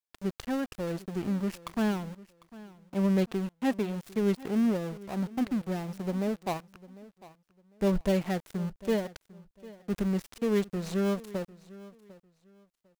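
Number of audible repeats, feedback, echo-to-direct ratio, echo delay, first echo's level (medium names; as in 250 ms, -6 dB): 2, 24%, -19.5 dB, 750 ms, -19.5 dB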